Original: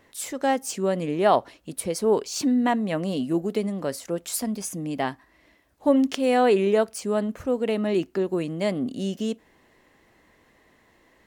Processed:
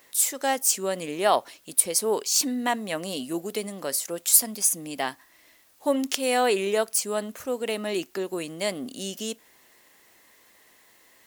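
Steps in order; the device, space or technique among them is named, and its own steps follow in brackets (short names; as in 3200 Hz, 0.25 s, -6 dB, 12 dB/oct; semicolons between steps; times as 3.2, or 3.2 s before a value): turntable without a phono preamp (RIAA curve recording; white noise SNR 36 dB); gain -1 dB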